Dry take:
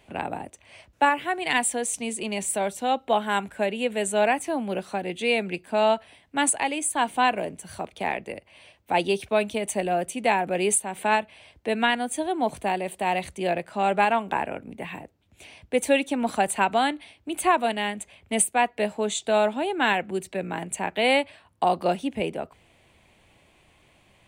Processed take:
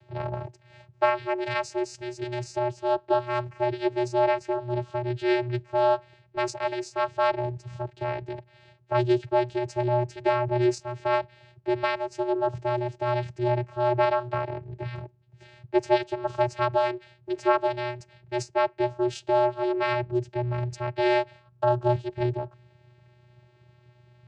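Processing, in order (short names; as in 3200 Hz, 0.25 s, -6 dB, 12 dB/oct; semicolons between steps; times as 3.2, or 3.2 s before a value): vocoder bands 8, square 122 Hz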